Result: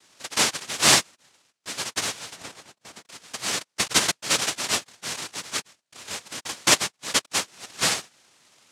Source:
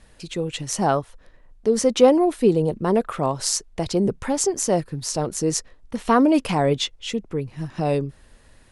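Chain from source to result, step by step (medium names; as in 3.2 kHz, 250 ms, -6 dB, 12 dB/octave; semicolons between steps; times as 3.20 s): LFO high-pass saw up 0.3 Hz 310–4100 Hz; noise-vocoded speech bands 1; 2.36–3.06 s: tilt shelf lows +3.5 dB, about 1.3 kHz; trim -1.5 dB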